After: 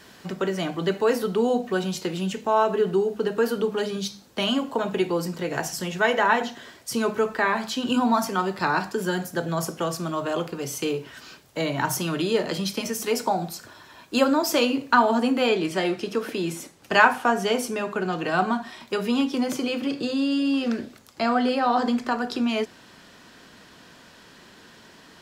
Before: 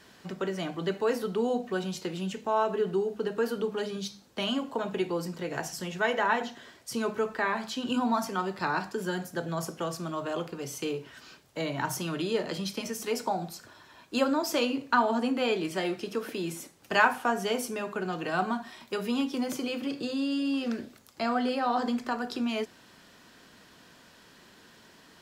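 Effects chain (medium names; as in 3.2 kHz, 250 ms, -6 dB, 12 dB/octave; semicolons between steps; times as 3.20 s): treble shelf 12 kHz +4.5 dB, from 15.49 s -7.5 dB; trim +6 dB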